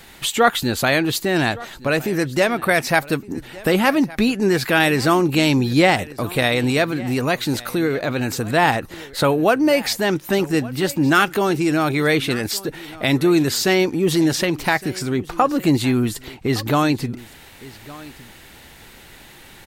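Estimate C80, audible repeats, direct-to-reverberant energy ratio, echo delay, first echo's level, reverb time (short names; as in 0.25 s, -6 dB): none, 1, none, 1.163 s, -20.0 dB, none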